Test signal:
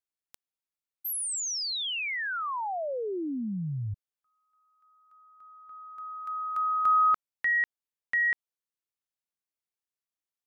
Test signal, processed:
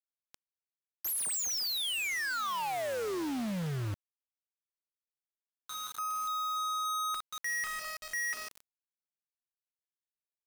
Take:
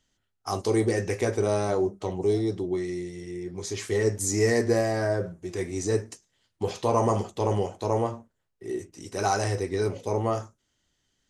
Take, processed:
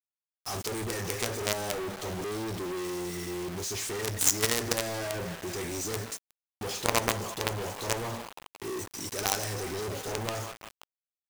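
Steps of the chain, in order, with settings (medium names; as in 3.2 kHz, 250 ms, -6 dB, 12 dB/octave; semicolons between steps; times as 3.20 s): treble shelf 2.5 kHz +9.5 dB; in parallel at -8 dB: integer overflow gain 19.5 dB; on the sum: band-passed feedback delay 175 ms, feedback 85%, band-pass 1.2 kHz, level -17 dB; companded quantiser 2-bit; trim -8.5 dB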